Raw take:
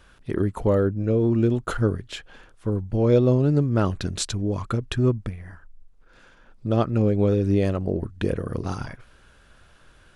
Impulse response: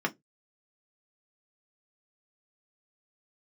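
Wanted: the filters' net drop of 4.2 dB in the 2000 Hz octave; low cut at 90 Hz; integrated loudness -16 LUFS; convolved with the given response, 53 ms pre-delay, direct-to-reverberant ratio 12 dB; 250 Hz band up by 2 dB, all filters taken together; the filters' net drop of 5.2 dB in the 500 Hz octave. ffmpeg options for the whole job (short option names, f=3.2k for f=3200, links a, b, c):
-filter_complex "[0:a]highpass=90,equalizer=f=250:t=o:g=5,equalizer=f=500:t=o:g=-8.5,equalizer=f=2k:t=o:g=-5.5,asplit=2[a][b];[1:a]atrim=start_sample=2205,adelay=53[c];[b][c]afir=irnorm=-1:irlink=0,volume=-20.5dB[d];[a][d]amix=inputs=2:normalize=0,volume=7.5dB"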